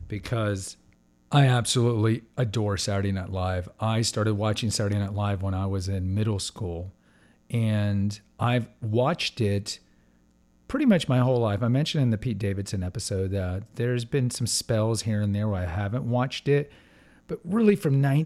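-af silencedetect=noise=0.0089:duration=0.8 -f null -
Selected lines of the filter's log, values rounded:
silence_start: 9.76
silence_end: 10.70 | silence_duration: 0.93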